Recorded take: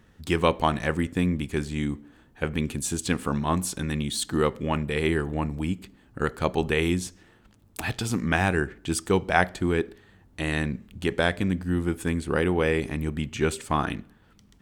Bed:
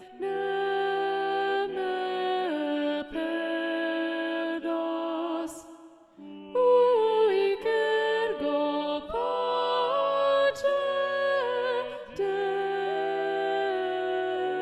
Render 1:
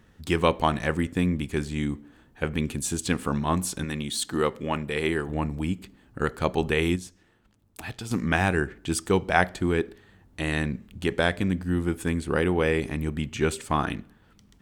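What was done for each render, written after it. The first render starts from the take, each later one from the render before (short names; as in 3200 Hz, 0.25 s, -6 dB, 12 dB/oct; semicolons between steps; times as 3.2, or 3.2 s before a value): 3.84–5.29 low shelf 160 Hz -8.5 dB; 6.96–8.11 gain -7 dB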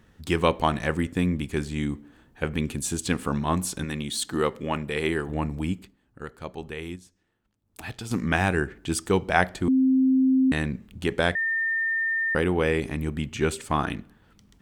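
5.74–7.84 dip -11.5 dB, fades 0.21 s; 9.68–10.52 bleep 262 Hz -16.5 dBFS; 11.35–12.35 bleep 1810 Hz -22.5 dBFS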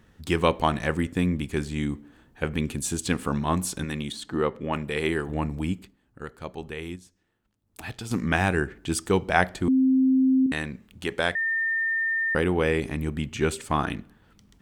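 4.12–4.73 LPF 1800 Hz 6 dB/oct; 10.46–11.45 low shelf 380 Hz -8 dB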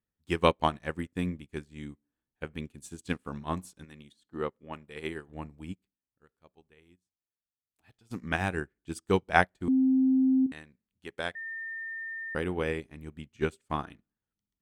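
upward expander 2.5:1, over -40 dBFS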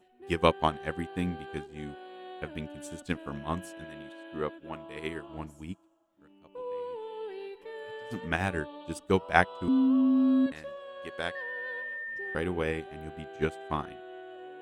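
add bed -16.5 dB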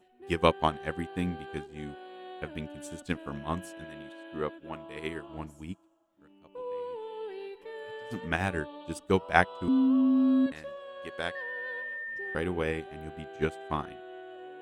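nothing audible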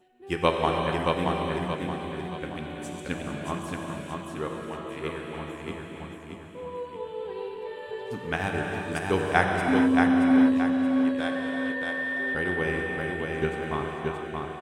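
on a send: feedback echo 0.626 s, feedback 40%, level -3.5 dB; on the sum: non-linear reverb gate 0.48 s flat, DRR 1 dB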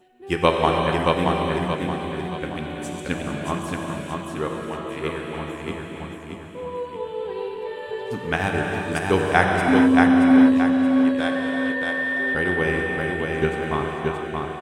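gain +5.5 dB; limiter -1 dBFS, peak gain reduction 1.5 dB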